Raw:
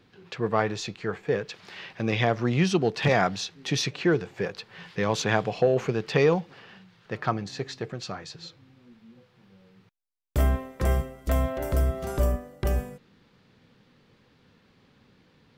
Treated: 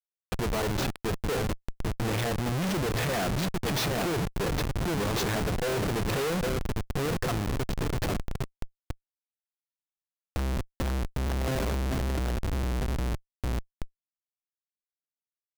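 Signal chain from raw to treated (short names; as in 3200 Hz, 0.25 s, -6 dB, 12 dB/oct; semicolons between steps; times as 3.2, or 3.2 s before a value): G.711 law mismatch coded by mu; feedback echo 0.804 s, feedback 44%, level -10 dB; Schmitt trigger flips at -29 dBFS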